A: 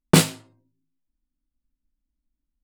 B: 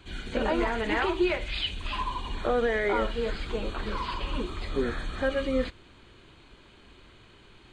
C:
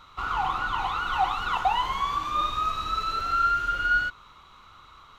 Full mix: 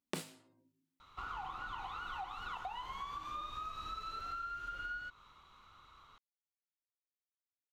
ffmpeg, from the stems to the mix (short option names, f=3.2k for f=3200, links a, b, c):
-filter_complex "[0:a]highpass=190,volume=-1dB[a];[2:a]adelay=1000,volume=-10dB[b];[a][b]amix=inputs=2:normalize=0,acompressor=threshold=-40dB:ratio=8"